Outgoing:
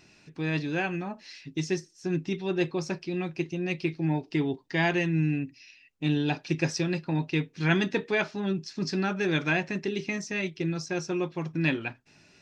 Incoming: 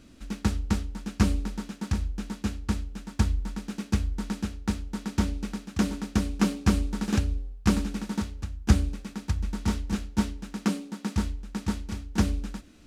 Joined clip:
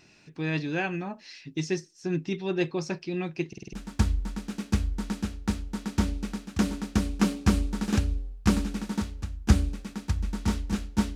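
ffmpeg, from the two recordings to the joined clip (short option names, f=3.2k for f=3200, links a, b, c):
-filter_complex "[0:a]apad=whole_dur=11.15,atrim=end=11.15,asplit=5[a][b][c][d][e];[a]atrim=end=3.532[f];[b]atrim=start=3.478:end=3.532[g];[c]atrim=start=3.478:end=3.532[h];[d]atrim=start=3.478:end=3.532[i];[e]atrim=start=3.478:end=3.532[j];[1:a]atrim=start=2.928:end=10.35[k];[f][g]acrossfade=d=0.004:c1=hsin:c2=hsin[l];[l][h]acrossfade=d=0.004:c1=hsin:c2=hsin[m];[m][i]acrossfade=d=0.004:c1=hsin:c2=hsin[n];[n][j]acrossfade=d=0.004:c1=hsin:c2=hsin[o];[o][k]acrossfade=d=0.004:c1=hsin:c2=hsin"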